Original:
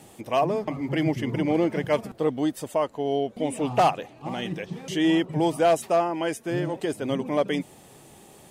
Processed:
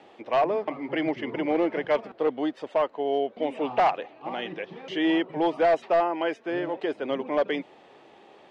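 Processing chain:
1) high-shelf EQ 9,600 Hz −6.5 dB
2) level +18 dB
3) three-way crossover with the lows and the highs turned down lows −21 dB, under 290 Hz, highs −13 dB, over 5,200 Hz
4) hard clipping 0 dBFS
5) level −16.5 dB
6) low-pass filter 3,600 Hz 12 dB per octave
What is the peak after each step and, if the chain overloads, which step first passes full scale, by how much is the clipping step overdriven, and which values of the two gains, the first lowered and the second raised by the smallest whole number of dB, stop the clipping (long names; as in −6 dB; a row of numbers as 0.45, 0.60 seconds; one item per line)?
−12.5, +5.5, +8.5, 0.0, −16.5, −16.0 dBFS
step 2, 8.5 dB
step 2 +9 dB, step 5 −7.5 dB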